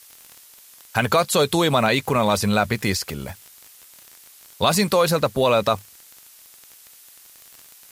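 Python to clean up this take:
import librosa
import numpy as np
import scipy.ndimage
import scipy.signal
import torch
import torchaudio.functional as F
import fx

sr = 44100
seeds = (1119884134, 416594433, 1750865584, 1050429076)

y = fx.fix_declick_ar(x, sr, threshold=6.5)
y = fx.noise_reduce(y, sr, print_start_s=6.19, print_end_s=6.69, reduce_db=18.0)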